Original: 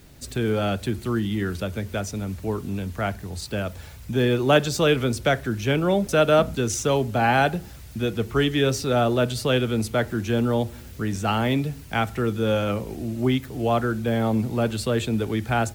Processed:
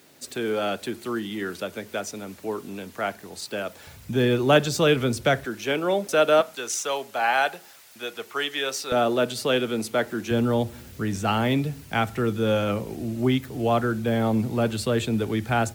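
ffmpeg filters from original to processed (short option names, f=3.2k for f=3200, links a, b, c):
-af "asetnsamples=n=441:p=0,asendcmd='3.87 highpass f 100;5.45 highpass f 330;6.41 highpass f 690;8.92 highpass f 240;10.31 highpass f 90',highpass=300"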